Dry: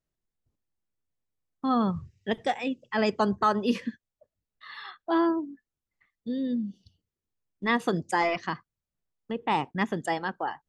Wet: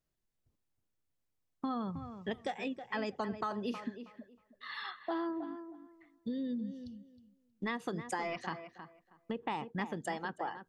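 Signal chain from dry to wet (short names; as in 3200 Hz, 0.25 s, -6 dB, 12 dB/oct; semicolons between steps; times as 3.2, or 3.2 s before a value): compressor 5:1, threshold -35 dBFS, peak gain reduction 15 dB; tape echo 0.317 s, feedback 22%, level -9 dB, low-pass 2100 Hz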